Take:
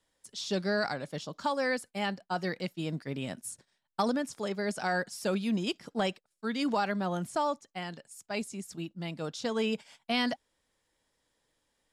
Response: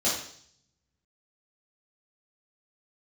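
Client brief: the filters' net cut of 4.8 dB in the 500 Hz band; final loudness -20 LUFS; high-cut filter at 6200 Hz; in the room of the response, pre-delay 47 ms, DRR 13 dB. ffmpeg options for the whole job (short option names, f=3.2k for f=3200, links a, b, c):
-filter_complex "[0:a]lowpass=6.2k,equalizer=f=500:t=o:g=-6,asplit=2[a][b];[1:a]atrim=start_sample=2205,adelay=47[c];[b][c]afir=irnorm=-1:irlink=0,volume=-24dB[d];[a][d]amix=inputs=2:normalize=0,volume=14.5dB"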